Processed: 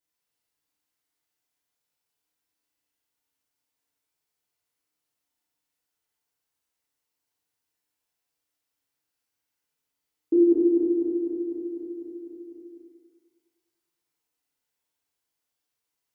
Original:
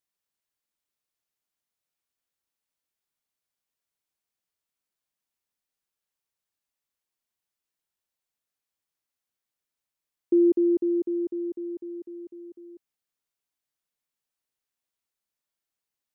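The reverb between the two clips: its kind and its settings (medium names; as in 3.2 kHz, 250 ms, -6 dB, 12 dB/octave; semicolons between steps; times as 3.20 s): FDN reverb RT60 1.7 s, low-frequency decay 0.75×, high-frequency decay 0.8×, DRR -6.5 dB; trim -2.5 dB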